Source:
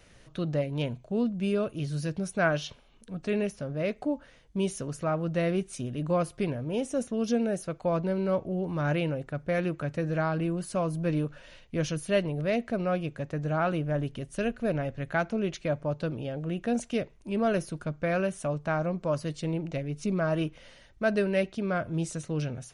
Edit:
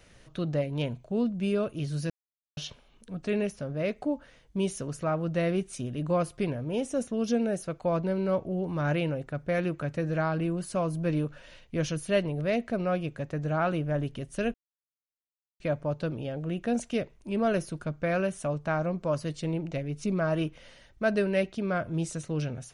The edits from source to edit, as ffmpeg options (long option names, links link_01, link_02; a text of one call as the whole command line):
ffmpeg -i in.wav -filter_complex "[0:a]asplit=5[link_01][link_02][link_03][link_04][link_05];[link_01]atrim=end=2.1,asetpts=PTS-STARTPTS,afade=type=out:start_time=2.096:duration=0.004:curve=hsin[link_06];[link_02]atrim=start=2.1:end=2.57,asetpts=PTS-STARTPTS,volume=0[link_07];[link_03]atrim=start=2.57:end=14.54,asetpts=PTS-STARTPTS,afade=type=in:duration=0.004:curve=hsin,afade=type=out:start_time=11.966:duration=0.004:curve=hsin[link_08];[link_04]atrim=start=14.54:end=15.6,asetpts=PTS-STARTPTS,volume=0[link_09];[link_05]atrim=start=15.6,asetpts=PTS-STARTPTS,afade=type=in:duration=0.004:curve=hsin[link_10];[link_06][link_07][link_08][link_09][link_10]concat=n=5:v=0:a=1" out.wav